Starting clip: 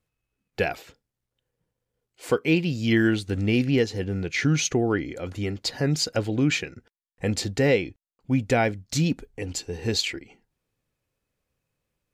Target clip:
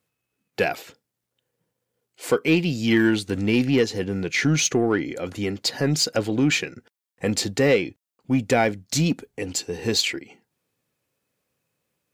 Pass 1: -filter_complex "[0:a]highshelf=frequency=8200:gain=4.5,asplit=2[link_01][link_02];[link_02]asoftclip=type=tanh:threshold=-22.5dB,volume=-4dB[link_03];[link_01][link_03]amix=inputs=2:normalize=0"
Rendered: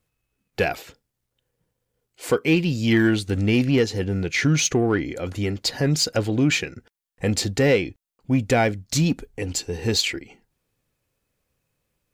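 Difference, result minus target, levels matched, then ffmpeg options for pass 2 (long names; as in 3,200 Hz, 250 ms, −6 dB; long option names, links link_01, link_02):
125 Hz band +3.0 dB
-filter_complex "[0:a]highpass=140,highshelf=frequency=8200:gain=4.5,asplit=2[link_01][link_02];[link_02]asoftclip=type=tanh:threshold=-22.5dB,volume=-4dB[link_03];[link_01][link_03]amix=inputs=2:normalize=0"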